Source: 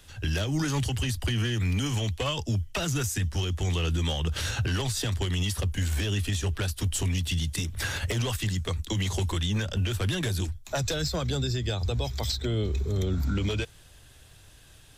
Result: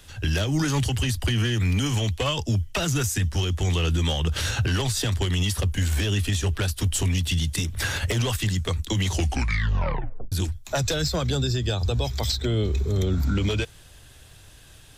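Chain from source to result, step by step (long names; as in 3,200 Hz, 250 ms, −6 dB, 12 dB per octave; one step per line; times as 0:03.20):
0:09.06: tape stop 1.26 s
0:11.35–0:12.01: notch filter 2,100 Hz, Q 6.1
level +4 dB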